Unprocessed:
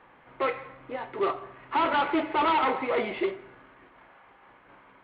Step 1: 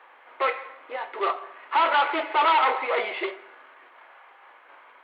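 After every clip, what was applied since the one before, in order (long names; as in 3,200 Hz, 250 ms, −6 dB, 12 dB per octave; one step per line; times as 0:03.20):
Bessel high-pass filter 640 Hz, order 4
level +5.5 dB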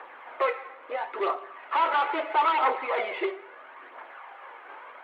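high-shelf EQ 2,500 Hz −8.5 dB
phase shifter 0.75 Hz, delay 2.7 ms, feedback 38%
multiband upward and downward compressor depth 40%
level −1.5 dB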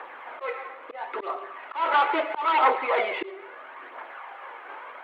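volume swells 212 ms
level +4 dB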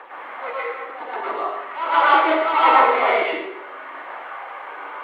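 dense smooth reverb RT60 0.72 s, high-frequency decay 0.85×, pre-delay 95 ms, DRR −7.5 dB
level −1 dB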